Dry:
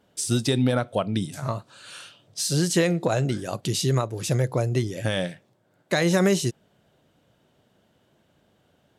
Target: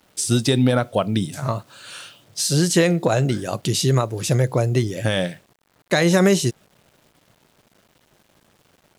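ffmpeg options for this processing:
-af "acrusher=bits=9:mix=0:aa=0.000001,volume=4.5dB"

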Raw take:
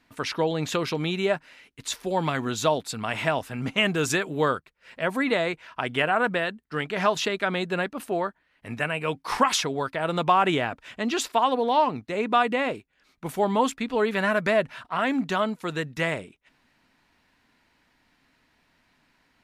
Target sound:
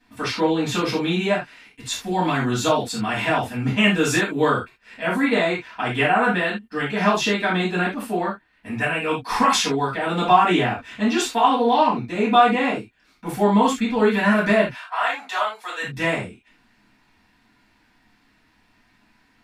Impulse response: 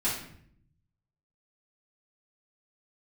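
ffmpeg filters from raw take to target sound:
-filter_complex "[0:a]asplit=3[a][b][c];[a]afade=t=out:st=14.69:d=0.02[d];[b]highpass=f=600:w=0.5412,highpass=f=600:w=1.3066,afade=t=in:st=14.69:d=0.02,afade=t=out:st=15.82:d=0.02[e];[c]afade=t=in:st=15.82:d=0.02[f];[d][e][f]amix=inputs=3:normalize=0[g];[1:a]atrim=start_sample=2205,atrim=end_sample=3969[h];[g][h]afir=irnorm=-1:irlink=0,volume=-3dB"

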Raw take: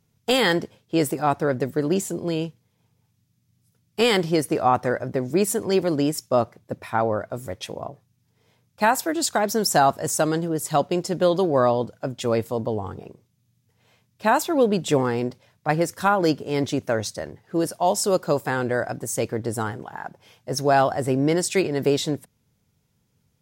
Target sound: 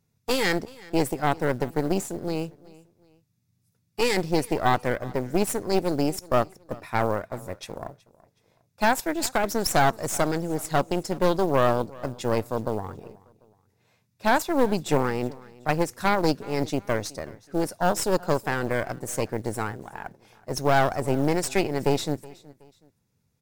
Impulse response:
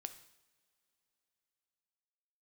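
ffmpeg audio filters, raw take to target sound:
-af "bandreject=f=3.1k:w=7.8,aeval=exprs='0.447*(cos(1*acos(clip(val(0)/0.447,-1,1)))-cos(1*PI/2))+0.126*(cos(4*acos(clip(val(0)/0.447,-1,1)))-cos(4*PI/2))':c=same,acrusher=bits=7:mode=log:mix=0:aa=0.000001,aecho=1:1:372|744:0.0794|0.0278,volume=-4.5dB"

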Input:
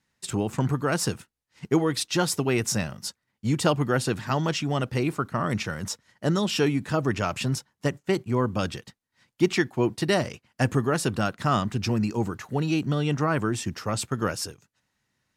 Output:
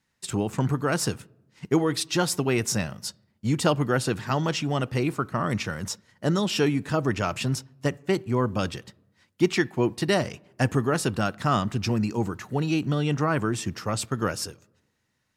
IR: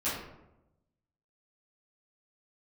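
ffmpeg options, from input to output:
-filter_complex "[0:a]asplit=2[a][b];[1:a]atrim=start_sample=2205,asetrate=41013,aresample=44100,lowpass=5.2k[c];[b][c]afir=irnorm=-1:irlink=0,volume=-30.5dB[d];[a][d]amix=inputs=2:normalize=0"

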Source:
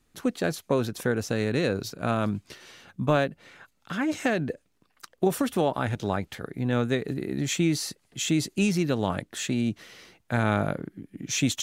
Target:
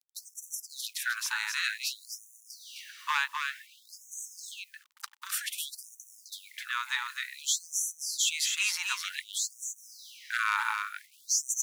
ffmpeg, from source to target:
-filter_complex "[0:a]acrossover=split=440|3000[a][b][c];[a]acompressor=threshold=-26dB:ratio=6[d];[d][b][c]amix=inputs=3:normalize=0,asplit=2[e][f];[f]asoftclip=type=tanh:threshold=-22dB,volume=-4dB[g];[e][g]amix=inputs=2:normalize=0,acrusher=bits=8:mix=0:aa=0.000001,aeval=exprs='0.211*(abs(mod(val(0)/0.211+3,4)-2)-1)':c=same,aecho=1:1:259:0.562,afftfilt=real='re*gte(b*sr/1024,820*pow(5800/820,0.5+0.5*sin(2*PI*0.54*pts/sr)))':imag='im*gte(b*sr/1024,820*pow(5800/820,0.5+0.5*sin(2*PI*0.54*pts/sr)))':win_size=1024:overlap=0.75"

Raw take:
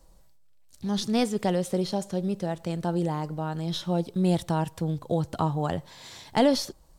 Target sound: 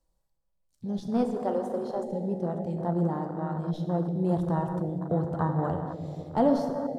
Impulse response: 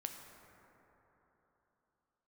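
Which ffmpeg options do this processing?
-filter_complex "[0:a]asettb=1/sr,asplit=3[a][b][c];[a]atrim=end=1.254[d];[b]atrim=start=1.25:end=2.04,asetpts=PTS-STARTPTS,afade=t=in:d=0.004:c=qsin,afade=t=out:st=0.786:d=0.004:c=qsin,highpass=f=340:w=0.5412,highpass=f=340:w=1.3066[e];[c]atrim=start=2.036[f];[d][e]acrossfade=d=0.004:c1=hsin:c2=qsin[g];[g][f]acrossfade=d=0.004:c1=qsin:c2=hsin[h];[1:a]atrim=start_sample=2205,asetrate=37044,aresample=44100[i];[h][i]afir=irnorm=-1:irlink=0,afwtdn=0.0251"

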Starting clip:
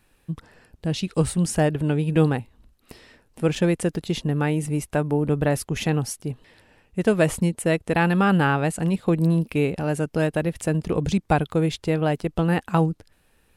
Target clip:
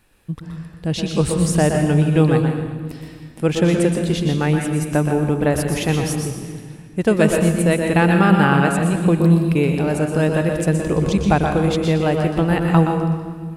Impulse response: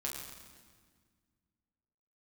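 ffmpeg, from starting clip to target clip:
-filter_complex "[0:a]asplit=2[a][b];[1:a]atrim=start_sample=2205,adelay=121[c];[b][c]afir=irnorm=-1:irlink=0,volume=-3.5dB[d];[a][d]amix=inputs=2:normalize=0,volume=3dB"

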